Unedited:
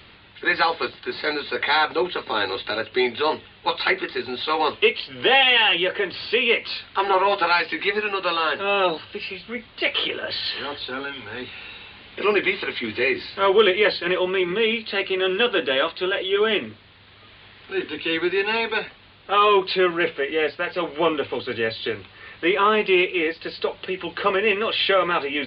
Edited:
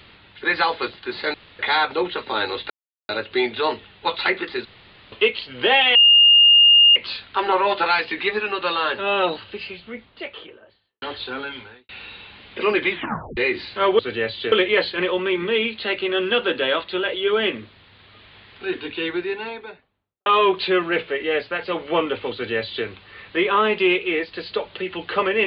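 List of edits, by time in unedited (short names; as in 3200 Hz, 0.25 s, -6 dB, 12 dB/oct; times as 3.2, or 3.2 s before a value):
1.34–1.59 room tone
2.7 insert silence 0.39 s
4.26–4.73 room tone
5.56–6.57 bleep 2830 Hz -8.5 dBFS
8.98–10.63 studio fade out
11.19–11.5 fade out quadratic
12.52 tape stop 0.46 s
17.75–19.34 studio fade out
21.41–21.94 copy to 13.6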